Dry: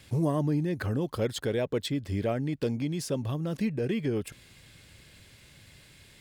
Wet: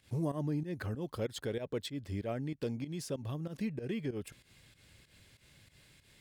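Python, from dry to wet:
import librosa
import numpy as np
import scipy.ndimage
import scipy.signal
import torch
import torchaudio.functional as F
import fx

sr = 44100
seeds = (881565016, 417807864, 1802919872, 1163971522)

y = fx.volume_shaper(x, sr, bpm=95, per_beat=2, depth_db=-14, release_ms=129.0, shape='fast start')
y = y * librosa.db_to_amplitude(-7.0)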